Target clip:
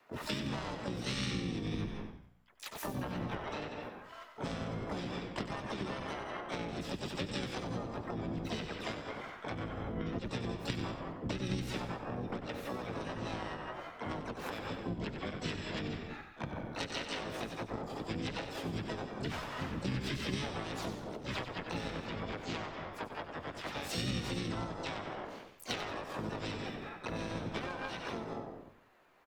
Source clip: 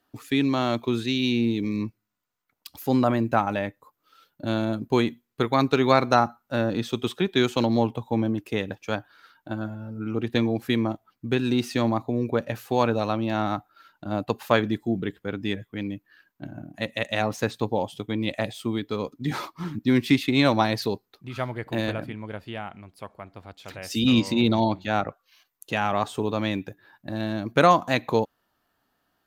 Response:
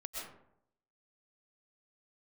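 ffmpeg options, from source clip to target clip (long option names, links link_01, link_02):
-filter_complex "[0:a]highshelf=frequency=10000:gain=6,asplit=2[link_01][link_02];[1:a]atrim=start_sample=2205,asetrate=79380,aresample=44100,adelay=82[link_03];[link_02][link_03]afir=irnorm=-1:irlink=0,volume=-4dB[link_04];[link_01][link_04]amix=inputs=2:normalize=0,alimiter=limit=-13.5dB:level=0:latency=1:release=162,acrossover=split=360 2800:gain=0.2 1 0.141[link_05][link_06][link_07];[link_05][link_06][link_07]amix=inputs=3:normalize=0,asplit=4[link_08][link_09][link_10][link_11];[link_09]asetrate=37084,aresample=44100,atempo=1.18921,volume=-17dB[link_12];[link_10]asetrate=58866,aresample=44100,atempo=0.749154,volume=-16dB[link_13];[link_11]asetrate=66075,aresample=44100,atempo=0.66742,volume=-4dB[link_14];[link_08][link_12][link_13][link_14]amix=inputs=4:normalize=0,acompressor=threshold=-38dB:ratio=5,asplit=4[link_15][link_16][link_17][link_18];[link_16]asetrate=22050,aresample=44100,atempo=2,volume=-2dB[link_19];[link_17]asetrate=35002,aresample=44100,atempo=1.25992,volume=-2dB[link_20];[link_18]asetrate=66075,aresample=44100,atempo=0.66742,volume=-6dB[link_21];[link_15][link_19][link_20][link_21]amix=inputs=4:normalize=0,aeval=exprs='0.106*(cos(1*acos(clip(val(0)/0.106,-1,1)))-cos(1*PI/2))+0.0188*(cos(3*acos(clip(val(0)/0.106,-1,1)))-cos(3*PI/2))':channel_layout=same,asplit=5[link_22][link_23][link_24][link_25][link_26];[link_23]adelay=94,afreqshift=-60,volume=-10dB[link_27];[link_24]adelay=188,afreqshift=-120,volume=-17.7dB[link_28];[link_25]adelay=282,afreqshift=-180,volume=-25.5dB[link_29];[link_26]adelay=376,afreqshift=-240,volume=-33.2dB[link_30];[link_22][link_27][link_28][link_29][link_30]amix=inputs=5:normalize=0,acrossover=split=190|3000[link_31][link_32][link_33];[link_32]acompressor=threshold=-49dB:ratio=6[link_34];[link_31][link_34][link_33]amix=inputs=3:normalize=0,volume=9.5dB"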